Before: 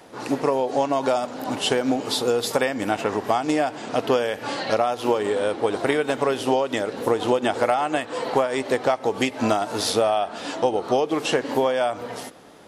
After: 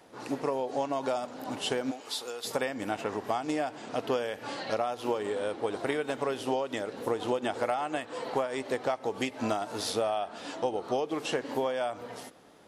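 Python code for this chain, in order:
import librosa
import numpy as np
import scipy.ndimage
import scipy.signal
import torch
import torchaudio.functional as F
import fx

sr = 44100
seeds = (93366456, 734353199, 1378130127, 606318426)

y = fx.highpass(x, sr, hz=1300.0, slope=6, at=(1.9, 2.44), fade=0.02)
y = y * librosa.db_to_amplitude(-9.0)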